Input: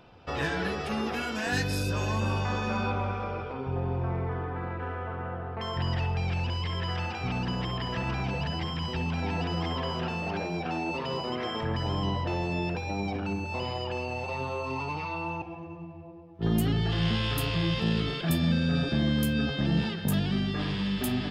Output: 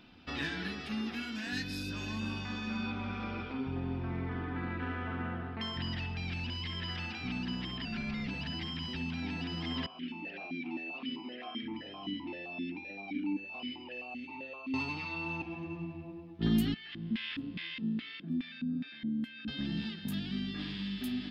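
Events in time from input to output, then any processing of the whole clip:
7.85–8.28 frequency shift -280 Hz
9.86–14.74 vowel sequencer 7.7 Hz
16.74–19.48 LFO band-pass square 2.4 Hz 240–2100 Hz
whole clip: graphic EQ 125/250/500/1000/2000/4000/8000 Hz -7/+12/-11/-4/+4/+8/-4 dB; vocal rider 0.5 s; gain -8.5 dB

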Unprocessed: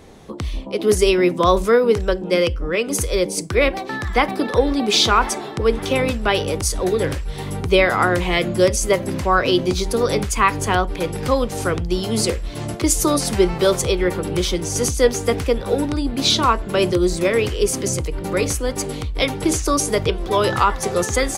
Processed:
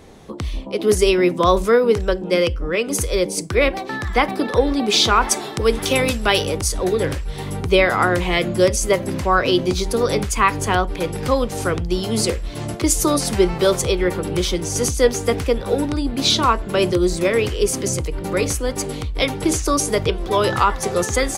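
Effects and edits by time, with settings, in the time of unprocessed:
5.31–6.48 high shelf 3600 Hz +10.5 dB

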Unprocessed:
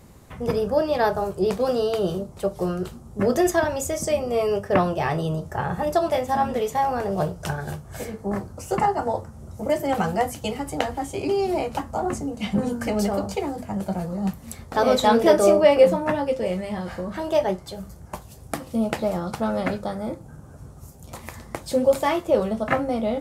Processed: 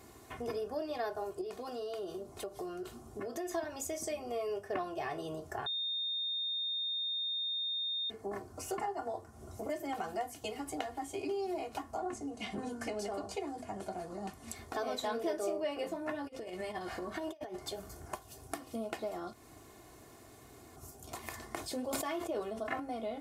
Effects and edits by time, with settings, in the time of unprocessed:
1.41–3.51 compressor 2.5:1, threshold -31 dBFS
5.66–8.1 bleep 3660 Hz -22.5 dBFS
11.97–14.56 LPF 11000 Hz 24 dB/oct
16.24–18.15 negative-ratio compressor -29 dBFS, ratio -0.5
19.33–20.76 room tone
21.26–22.8 sustainer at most 60 dB/s
whole clip: HPF 230 Hz 6 dB/oct; comb 2.8 ms, depth 69%; compressor 2.5:1, threshold -37 dBFS; gain -3.5 dB

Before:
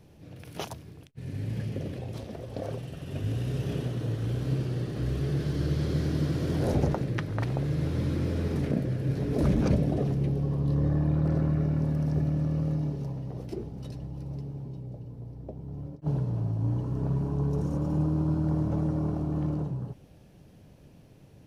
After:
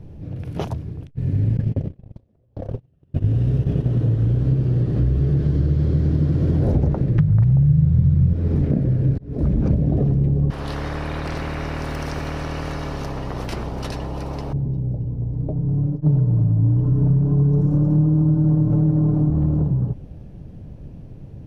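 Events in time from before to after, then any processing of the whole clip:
1.57–3.88 gate -33 dBFS, range -37 dB
7.18–8.33 resonant low shelf 210 Hz +8.5 dB, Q 3
9.18–9.9 fade in
10.5–14.53 spectral compressor 10:1
15.33–19.3 comb 6.7 ms, depth 82%
whole clip: tilt -3.5 dB/oct; compressor 4:1, threshold -21 dBFS; gain +5.5 dB

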